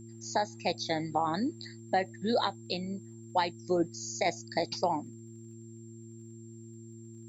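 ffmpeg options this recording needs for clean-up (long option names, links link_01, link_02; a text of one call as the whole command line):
ffmpeg -i in.wav -af "adeclick=threshold=4,bandreject=frequency=113.2:width_type=h:width=4,bandreject=frequency=226.4:width_type=h:width=4,bandreject=frequency=339.6:width_type=h:width=4,bandreject=frequency=7400:width=30,agate=range=-21dB:threshold=-40dB" out.wav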